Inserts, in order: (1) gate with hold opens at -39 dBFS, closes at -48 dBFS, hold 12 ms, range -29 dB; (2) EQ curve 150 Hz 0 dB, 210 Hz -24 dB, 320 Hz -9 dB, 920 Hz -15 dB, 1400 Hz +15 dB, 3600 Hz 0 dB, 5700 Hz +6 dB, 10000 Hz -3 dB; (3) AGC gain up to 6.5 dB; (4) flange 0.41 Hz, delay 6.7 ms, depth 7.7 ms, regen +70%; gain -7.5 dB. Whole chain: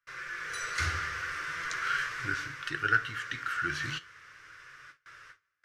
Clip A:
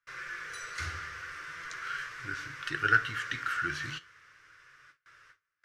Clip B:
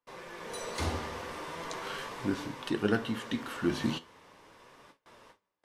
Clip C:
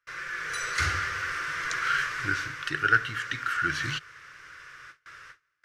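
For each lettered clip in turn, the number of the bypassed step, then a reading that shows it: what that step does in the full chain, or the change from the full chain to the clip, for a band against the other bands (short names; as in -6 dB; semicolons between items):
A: 3, momentary loudness spread change -8 LU; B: 2, 250 Hz band +16.5 dB; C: 4, loudness change +4.5 LU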